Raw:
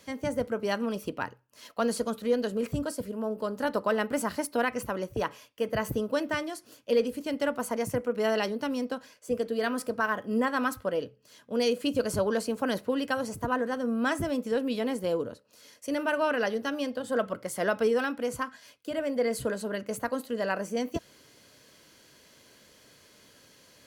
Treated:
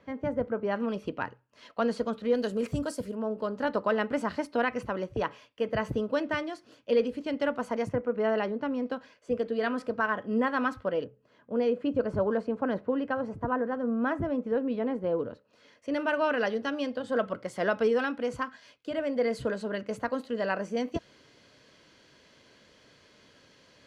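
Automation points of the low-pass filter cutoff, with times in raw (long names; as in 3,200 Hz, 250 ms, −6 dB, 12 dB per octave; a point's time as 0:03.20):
1,700 Hz
from 0:00.76 3,400 Hz
from 0:02.35 8,700 Hz
from 0:03.15 3,800 Hz
from 0:07.89 1,900 Hz
from 0:08.86 3,300 Hz
from 0:11.04 1,500 Hz
from 0:15.19 2,700 Hz
from 0:15.94 4,500 Hz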